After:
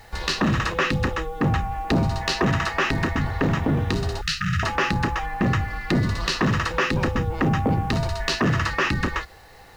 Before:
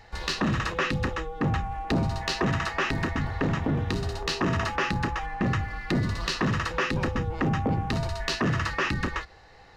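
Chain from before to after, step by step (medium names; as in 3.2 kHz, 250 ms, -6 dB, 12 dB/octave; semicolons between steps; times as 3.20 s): 4.21–4.63 s: brick-wall FIR band-stop 200–1200 Hz; bit crusher 10-bit; trim +4.5 dB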